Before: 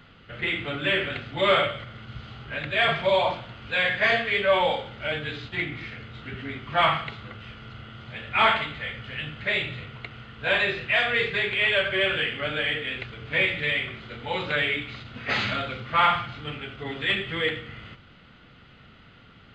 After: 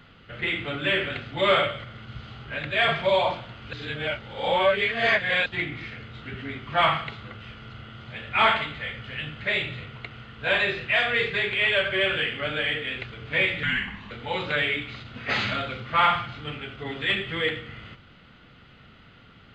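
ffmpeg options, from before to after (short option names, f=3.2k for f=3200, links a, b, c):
-filter_complex "[0:a]asettb=1/sr,asplit=3[a][b][c];[a]atrim=end=13.634[d];[b]atrim=start=13.63:end=14.11,asetpts=PTS-STARTPTS,afade=t=in:d=0.004:c=qsin,afade=t=out:st=0.476:d=0.004:c=qsin,afreqshift=-320[e];[c]atrim=start=14.106[f];[d][e]acrossfade=d=0.004:c1=hsin:c2=qsin[g];[g][f]acrossfade=d=0.004:c1=qsin:c2=hsin,asplit=3[h][i][j];[h]atrim=end=3.732[k];[i]atrim=start=3.728:end=5.462,asetpts=PTS-STARTPTS,areverse[l];[j]atrim=start=5.458[m];[k][l]acrossfade=d=0.004:c1=hsin:c2=hsin[n];[n][m]acrossfade=d=0.004:c1=hsin:c2=hsin"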